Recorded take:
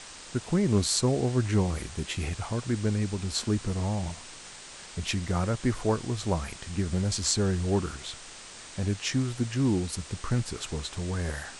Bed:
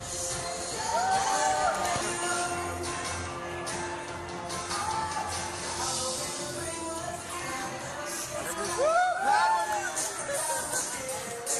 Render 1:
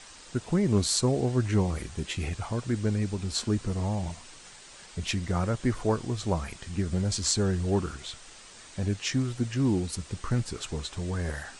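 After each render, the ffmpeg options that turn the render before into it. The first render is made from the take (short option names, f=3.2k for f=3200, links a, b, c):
-af "afftdn=nr=6:nf=-46"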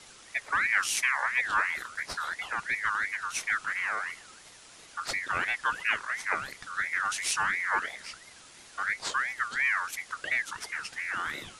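-af "aeval=exprs='val(0)*sin(2*PI*1700*n/s+1700*0.25/2.9*sin(2*PI*2.9*n/s))':c=same"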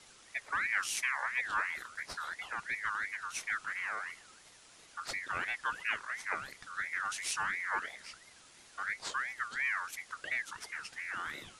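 -af "volume=-6.5dB"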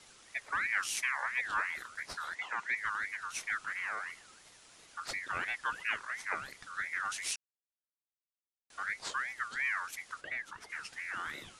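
-filter_complex "[0:a]asettb=1/sr,asplit=3[a][b][c];[a]atrim=end=2.354[d];[b]atrim=start=2.35:end=2.77,asetpts=PTS-STARTPTS,afade=t=in:d=0.004:c=qsin,afade=t=out:st=0.416:d=0.004:c=qsin,highpass=210,equalizer=f=980:t=q:w=4:g=6,equalizer=f=2k:t=q:w=4:g=5,equalizer=f=4.8k:t=q:w=4:g=-3,lowpass=f=8.5k:w=0.5412,lowpass=f=8.5k:w=1.3066[e];[c]atrim=start=2.766[f];[d][e]acrossfade=d=0.004:c1=hsin:c2=qsin[g];[g][f]acrossfade=d=0.004:c1=qsin:c2=hsin,asplit=3[h][i][j];[h]afade=t=out:st=10.2:d=0.02[k];[i]highshelf=f=2.8k:g=-10,afade=t=in:st=10.2:d=0.02,afade=t=out:st=10.69:d=0.02[l];[j]afade=t=in:st=10.69:d=0.02[m];[k][l][m]amix=inputs=3:normalize=0,asplit=3[n][o][p];[n]atrim=end=7.36,asetpts=PTS-STARTPTS,afade=t=out:st=7.356:d=0.004:c=hsin[q];[o]atrim=start=7.36:end=8.7,asetpts=PTS-STARTPTS,volume=0[r];[p]atrim=start=8.7,asetpts=PTS-STARTPTS,afade=t=in:d=0.004:c=hsin[s];[q][r][s]concat=n=3:v=0:a=1"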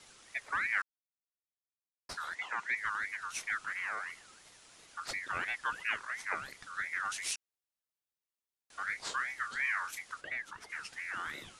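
-filter_complex "[0:a]asettb=1/sr,asplit=3[a][b][c];[a]atrim=end=8.844[d];[b]atrim=start=8.84:end=10.01,asetpts=PTS-STARTPTS,afade=t=in:d=0.004:c=qsin,afade=t=out:st=1.166:d=0.004:c=qsin,asplit=2[e][f];[f]adelay=30,volume=-8dB[g];[e][g]amix=inputs=2:normalize=0,atrim=end_sample=51597[h];[c]atrim=start=10.006[i];[d][h]acrossfade=d=0.004:c1=hsin:c2=qsin[j];[j][i]acrossfade=d=0.004:c1=qsin:c2=hsin,asplit=3[k][l][m];[k]atrim=end=0.82,asetpts=PTS-STARTPTS,afade=t=out:st=0.816:d=0.004:c=hsin[n];[l]atrim=start=0.82:end=2.09,asetpts=PTS-STARTPTS,volume=0[o];[m]atrim=start=2.09,asetpts=PTS-STARTPTS,afade=t=in:d=0.004:c=hsin[p];[n][o][p]concat=n=3:v=0:a=1"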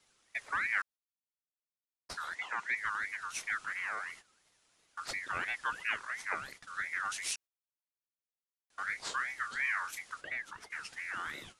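-af "agate=range=-13dB:threshold=-51dB:ratio=16:detection=peak"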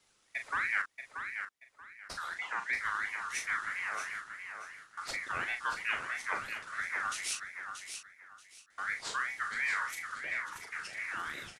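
-filter_complex "[0:a]asplit=2[a][b];[b]adelay=39,volume=-7dB[c];[a][c]amix=inputs=2:normalize=0,aecho=1:1:632|1264|1896:0.422|0.105|0.0264"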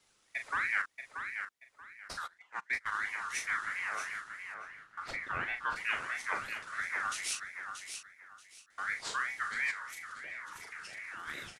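-filter_complex "[0:a]asplit=3[a][b][c];[a]afade=t=out:st=2.26:d=0.02[d];[b]agate=range=-24dB:threshold=-35dB:ratio=16:release=100:detection=peak,afade=t=in:st=2.26:d=0.02,afade=t=out:st=2.91:d=0.02[e];[c]afade=t=in:st=2.91:d=0.02[f];[d][e][f]amix=inputs=3:normalize=0,asettb=1/sr,asplit=3[g][h][i];[g]atrim=end=4.544[j];[h]atrim=start=4.54:end=5.76,asetpts=PTS-STARTPTS,afade=t=in:d=0.004:c=qsin,afade=t=out:st=1.216:d=0.004:c=qsin,bass=f=250:g=4,treble=f=4k:g=-12[k];[i]atrim=start=5.756[l];[j][k]acrossfade=d=0.004:c1=hsin:c2=qsin[m];[m][l]acrossfade=d=0.004:c1=qsin:c2=hsin,asplit=3[n][o][p];[n]afade=t=out:st=9.7:d=0.02[q];[o]acompressor=threshold=-43dB:ratio=2.5:attack=3.2:release=140:knee=1:detection=peak,afade=t=in:st=9.7:d=0.02,afade=t=out:st=11.27:d=0.02[r];[p]afade=t=in:st=11.27:d=0.02[s];[q][r][s]amix=inputs=3:normalize=0"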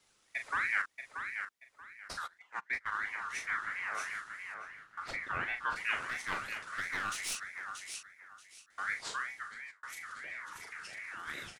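-filter_complex "[0:a]asettb=1/sr,asplit=3[a][b][c];[a]atrim=end=2.594[d];[b]atrim=start=2.59:end=3.95,asetpts=PTS-STARTPTS,afade=t=in:d=0.004:c=qsin,afade=t=out:st=1.356:d=0.004:c=qsin,highshelf=f=4.2k:g=-9[e];[c]atrim=start=3.946[f];[d][e]acrossfade=d=0.004:c1=hsin:c2=qsin[g];[g][f]acrossfade=d=0.004:c1=qsin:c2=hsin,asettb=1/sr,asplit=3[h][i][j];[h]atrim=end=6.024[k];[i]atrim=start=6.02:end=7.94,asetpts=PTS-STARTPTS,afade=t=in:d=0.004:c=qsin,afade=t=out:st=1.916:d=0.004:c=qsin,aeval=exprs='clip(val(0),-1,0.0188)':c=same[l];[j]atrim=start=7.936[m];[k][l]acrossfade=d=0.004:c1=hsin:c2=qsin[n];[n][m]acrossfade=d=0.004:c1=qsin:c2=hsin,asplit=2[o][p];[o]atrim=end=9.83,asetpts=PTS-STARTPTS,afade=t=out:st=8.91:d=0.92[q];[p]atrim=start=9.83,asetpts=PTS-STARTPTS,afade=t=in:d=0.004:c=hsin[r];[q][r]concat=n=2:v=0:a=1"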